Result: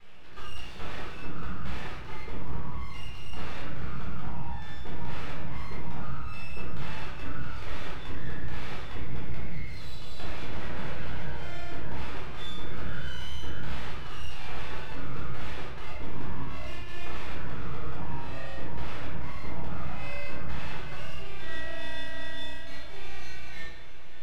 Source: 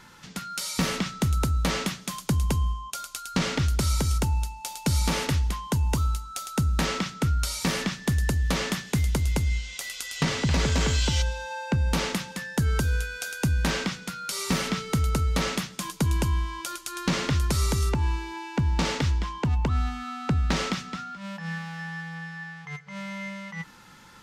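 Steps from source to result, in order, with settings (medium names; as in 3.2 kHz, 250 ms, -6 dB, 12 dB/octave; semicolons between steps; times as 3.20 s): time reversed locally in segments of 33 ms; low-pass 2.1 kHz 24 dB/octave; bass shelf 220 Hz -8.5 dB; compression, threshold -35 dBFS, peak gain reduction 10.5 dB; feedback comb 740 Hz, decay 0.17 s, harmonics all, mix 70%; full-wave rectifier; echo that smears into a reverb 526 ms, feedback 70%, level -15 dB; simulated room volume 440 m³, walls mixed, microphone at 4.1 m; trim +2 dB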